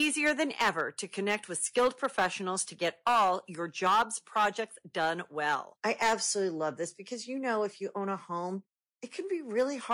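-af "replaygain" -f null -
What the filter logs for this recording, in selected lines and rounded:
track_gain = +9.8 dB
track_peak = 0.066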